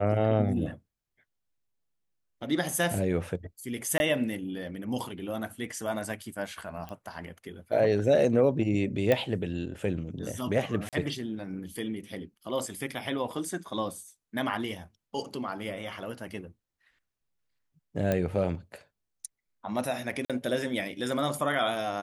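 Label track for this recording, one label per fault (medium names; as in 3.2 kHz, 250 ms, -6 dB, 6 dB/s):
3.980000	4.000000	dropout 21 ms
6.890000	6.890000	pop -26 dBFS
9.120000	9.120000	pop -12 dBFS
10.890000	10.930000	dropout 37 ms
18.120000	18.120000	pop -14 dBFS
20.250000	20.300000	dropout 46 ms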